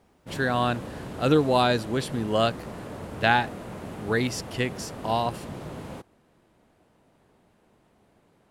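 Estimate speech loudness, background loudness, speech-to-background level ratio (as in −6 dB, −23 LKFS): −26.0 LKFS, −38.5 LKFS, 12.5 dB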